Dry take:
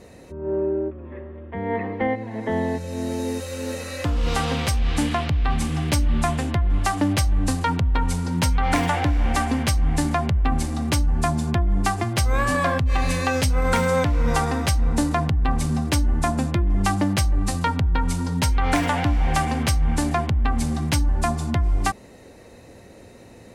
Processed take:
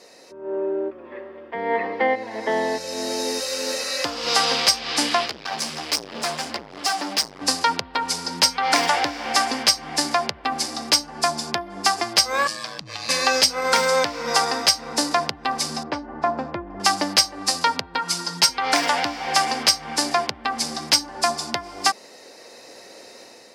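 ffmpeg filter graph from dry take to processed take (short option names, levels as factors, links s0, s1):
-filter_complex "[0:a]asettb=1/sr,asplit=3[s0][s1][s2];[s0]atrim=end=5.264[s3];[s1]atrim=start=5.26:end=7.42,asetpts=PTS-STARTPTS,afade=t=in:d=0.004:c=qsin,afade=t=out:st=2.156:d=0.004:c=qsin,asplit=2[s4][s5];[s5]adelay=14,volume=0.631[s6];[s4][s6]amix=inputs=2:normalize=0,atrim=end_sample=95256,flanger=delay=2.3:depth=3.6:regen=-15:speed=1.4:shape=triangular,asoftclip=type=hard:threshold=0.0531[s7];[s2]atrim=start=7.416[s8];[s3][s7]acrossfade=d=0.004:c1=hsin:c2=qsin[s9];[s9][s8]acrossfade=d=0.004:c1=qsin:c2=hsin,asettb=1/sr,asplit=3[s10][s11][s12];[s10]atrim=end=12.474[s13];[s11]atrim=start=12.47:end=13.09,asetpts=PTS-STARTPTS,afade=t=in:d=0.004:c=qsin,afade=t=out:st=0.616:d=0.004:c=qsin,acrossover=split=160|3000[s14][s15][s16];[s15]acompressor=threshold=0.0158:ratio=5:attack=3.2:release=140:knee=2.83:detection=peak[s17];[s14][s17][s16]amix=inputs=3:normalize=0,aeval=exprs='val(0)*sin(2*PI*56*n/s)':c=same,highshelf=f=8500:g=-8.5[s18];[s12]atrim=start=13.086[s19];[s13][s18]acrossfade=d=0.004:c1=hsin:c2=qsin[s20];[s20][s19]acrossfade=d=0.004:c1=qsin:c2=hsin,asettb=1/sr,asplit=3[s21][s22][s23];[s21]atrim=end=15.834[s24];[s22]atrim=start=15.83:end=16.8,asetpts=PTS-STARTPTS,afade=t=in:d=0.004:c=qsin,afade=t=out:st=0.966:d=0.004:c=qsin,lowpass=1300,asubboost=boost=6.5:cutoff=120[s25];[s23]atrim=start=16.796[s26];[s24][s25]acrossfade=d=0.004:c1=hsin:c2=qsin[s27];[s27][s26]acrossfade=d=0.004:c1=qsin:c2=hsin,asettb=1/sr,asplit=3[s28][s29][s30];[s28]atrim=end=17.984[s31];[s29]atrim=start=17.98:end=18.49,asetpts=PTS-STARTPTS,afade=t=in:d=0.004:c=qsin,afade=t=out:st=0.506:d=0.004:c=qsin,highpass=79,bandreject=f=510:w=7.4,aecho=1:1:5.8:0.72,atrim=end_sample=22491[s32];[s30]atrim=start=18.486[s33];[s31][s32]acrossfade=d=0.004:c1=hsin:c2=qsin[s34];[s34][s33]acrossfade=d=0.004:c1=qsin:c2=hsin,highpass=470,equalizer=f=5000:t=o:w=0.54:g=14.5,dynaudnorm=f=430:g=3:m=1.88"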